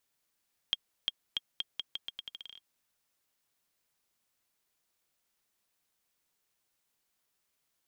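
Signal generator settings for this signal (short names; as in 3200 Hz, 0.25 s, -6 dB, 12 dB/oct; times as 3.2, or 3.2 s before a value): bouncing ball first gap 0.35 s, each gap 0.82, 3240 Hz, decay 31 ms -15.5 dBFS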